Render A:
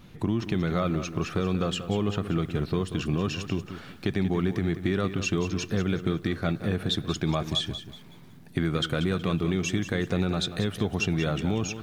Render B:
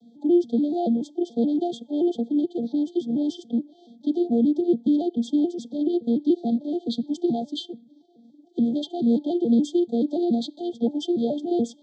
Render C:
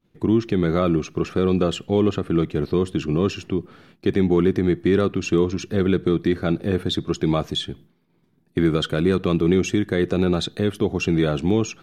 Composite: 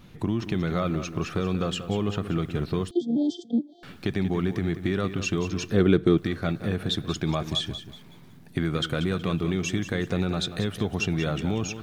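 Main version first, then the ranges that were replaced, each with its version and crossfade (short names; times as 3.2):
A
2.91–3.83 from B
5.74–6.18 from C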